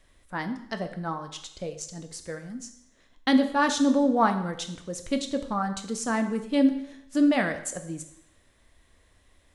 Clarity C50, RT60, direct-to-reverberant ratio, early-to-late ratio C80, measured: 11.0 dB, 0.75 s, 7.0 dB, 13.5 dB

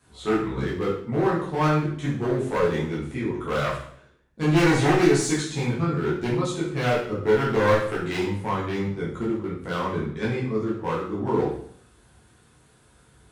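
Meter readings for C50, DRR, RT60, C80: 3.5 dB, −8.0 dB, 0.65 s, 7.5 dB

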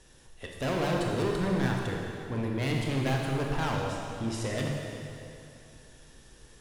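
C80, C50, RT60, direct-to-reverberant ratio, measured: 2.0 dB, 0.5 dB, 2.7 s, −0.5 dB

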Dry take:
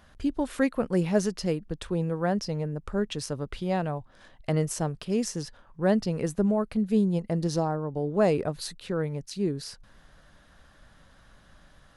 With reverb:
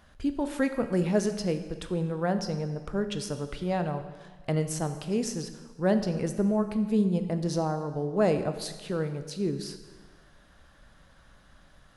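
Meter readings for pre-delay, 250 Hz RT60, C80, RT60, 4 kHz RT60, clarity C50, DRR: 19 ms, 1.4 s, 11.5 dB, 1.4 s, 1.2 s, 10.0 dB, 8.5 dB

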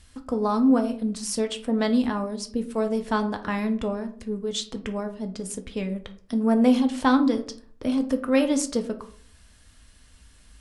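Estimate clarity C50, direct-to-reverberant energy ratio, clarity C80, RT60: 13.5 dB, 6.0 dB, 17.5 dB, 0.50 s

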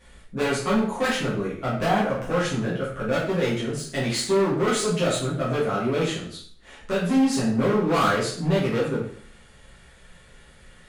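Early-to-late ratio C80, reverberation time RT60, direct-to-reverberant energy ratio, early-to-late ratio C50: 7.0 dB, 0.55 s, −9.0 dB, 4.0 dB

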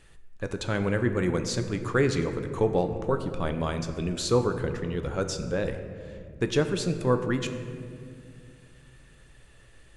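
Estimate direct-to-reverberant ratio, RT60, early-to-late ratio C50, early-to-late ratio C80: 7.0 dB, 2.2 s, 9.0 dB, 10.0 dB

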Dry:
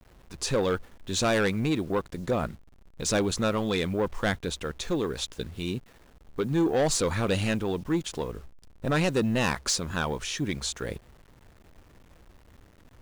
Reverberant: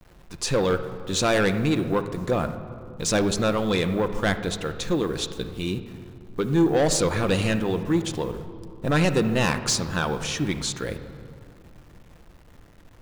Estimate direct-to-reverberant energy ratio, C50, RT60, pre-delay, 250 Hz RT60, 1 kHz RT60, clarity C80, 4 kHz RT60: 8.5 dB, 10.5 dB, 2.4 s, 6 ms, 3.0 s, 2.3 s, 12.0 dB, 1.4 s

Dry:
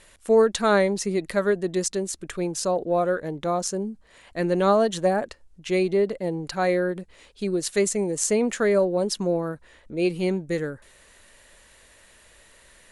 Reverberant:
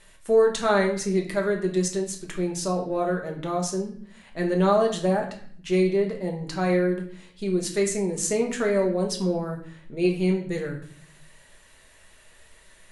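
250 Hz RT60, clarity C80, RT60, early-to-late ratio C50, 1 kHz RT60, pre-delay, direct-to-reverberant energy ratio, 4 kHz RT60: 0.90 s, 12.0 dB, 0.55 s, 8.5 dB, 0.55 s, 5 ms, 0.5 dB, 0.50 s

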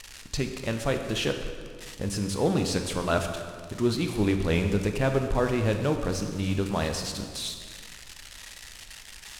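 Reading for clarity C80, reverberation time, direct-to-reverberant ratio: 8.0 dB, 1.9 s, 5.0 dB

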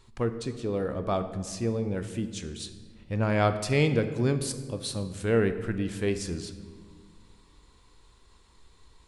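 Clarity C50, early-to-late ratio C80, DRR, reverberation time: 10.5 dB, 12.5 dB, 9.0 dB, 1.9 s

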